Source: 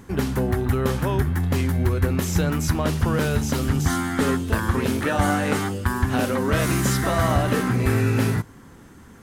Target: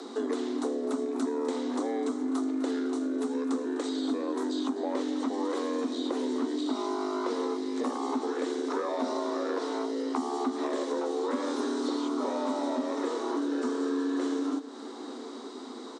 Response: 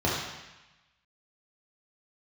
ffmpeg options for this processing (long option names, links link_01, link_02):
-filter_complex "[0:a]equalizer=frequency=200:width_type=o:width=0.33:gain=-10,equalizer=frequency=400:width_type=o:width=0.33:gain=4,equalizer=frequency=4000:width_type=o:width=0.33:gain=-7,equalizer=frequency=6300:width_type=o:width=0.33:gain=8,acrossover=split=87|2000[link_01][link_02][link_03];[link_01]acompressor=threshold=-33dB:ratio=4[link_04];[link_02]acompressor=threshold=-28dB:ratio=4[link_05];[link_03]acompressor=threshold=-44dB:ratio=4[link_06];[link_04][link_05][link_06]amix=inputs=3:normalize=0,asplit=2[link_07][link_08];[link_08]aecho=0:1:515:0.0631[link_09];[link_07][link_09]amix=inputs=2:normalize=0,afreqshift=370,asetrate=25442,aresample=44100,acompressor=threshold=-36dB:ratio=2.5,asplit=2[link_10][link_11];[link_11]aecho=0:1:253|506|759|1012:0.178|0.0836|0.0393|0.0185[link_12];[link_10][link_12]amix=inputs=2:normalize=0,volume=5dB"